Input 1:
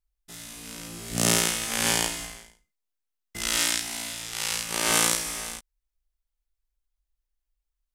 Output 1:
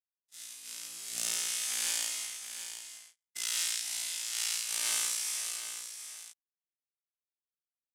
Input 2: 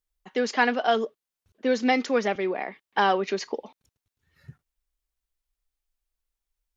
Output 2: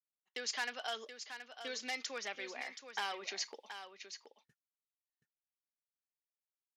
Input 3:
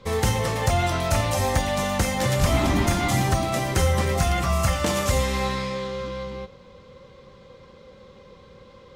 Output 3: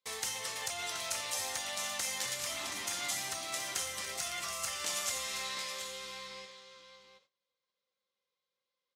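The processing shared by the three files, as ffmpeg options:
-af "agate=range=-28dB:threshold=-41dB:ratio=16:detection=peak,acompressor=threshold=-25dB:ratio=2,volume=18dB,asoftclip=hard,volume=-18dB,bandpass=f=7.3k:t=q:w=0.56:csg=0,aecho=1:1:726:0.335"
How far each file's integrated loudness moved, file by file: -8.0, -16.0, -12.0 LU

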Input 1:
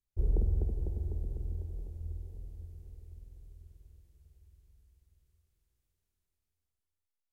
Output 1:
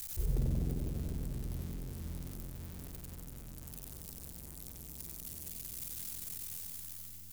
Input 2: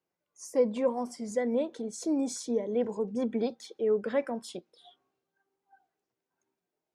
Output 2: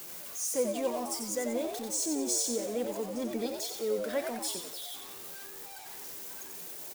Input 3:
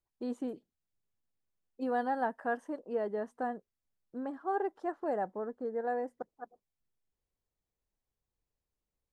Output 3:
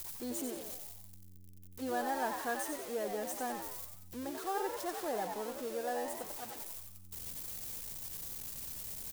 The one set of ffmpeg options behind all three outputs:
-filter_complex "[0:a]aeval=exprs='val(0)+0.5*0.00841*sgn(val(0))':c=same,asplit=7[a][b][c][d][e][f][g];[b]adelay=91,afreqshift=90,volume=-6dB[h];[c]adelay=182,afreqshift=180,volume=-12.7dB[i];[d]adelay=273,afreqshift=270,volume=-19.5dB[j];[e]adelay=364,afreqshift=360,volume=-26.2dB[k];[f]adelay=455,afreqshift=450,volume=-33dB[l];[g]adelay=546,afreqshift=540,volume=-39.7dB[m];[a][h][i][j][k][l][m]amix=inputs=7:normalize=0,crystalizer=i=4:c=0,volume=-6dB"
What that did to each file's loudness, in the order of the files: -4.0, -2.5, -3.0 LU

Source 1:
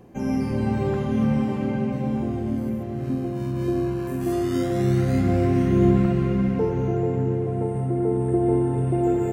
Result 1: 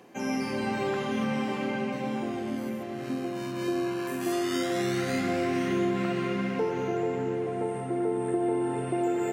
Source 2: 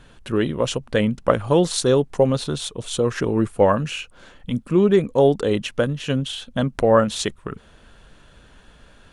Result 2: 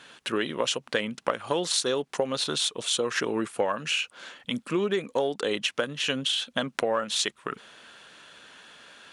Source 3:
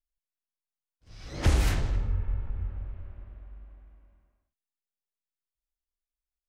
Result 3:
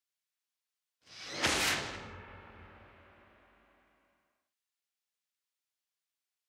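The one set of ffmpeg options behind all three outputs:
-filter_complex "[0:a]tiltshelf=f=1.1k:g=-7,asplit=2[a][b];[b]aeval=exprs='clip(val(0),-1,0.251)':c=same,volume=-9dB[c];[a][c]amix=inputs=2:normalize=0,highpass=230,highshelf=f=7.6k:g=-9.5,acompressor=threshold=-23dB:ratio=6"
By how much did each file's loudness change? -6.5, -7.0, -2.0 LU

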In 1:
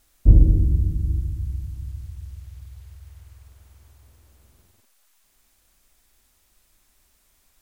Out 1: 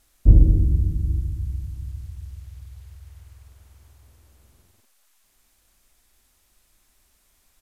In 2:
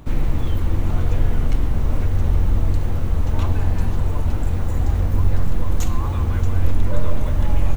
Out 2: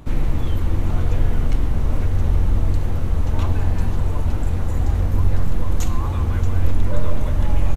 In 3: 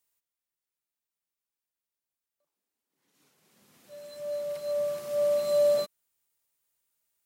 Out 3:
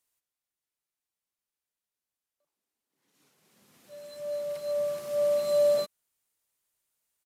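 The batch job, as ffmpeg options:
-af "aresample=32000,aresample=44100"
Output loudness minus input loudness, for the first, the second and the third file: 0.0, 0.0, 0.0 LU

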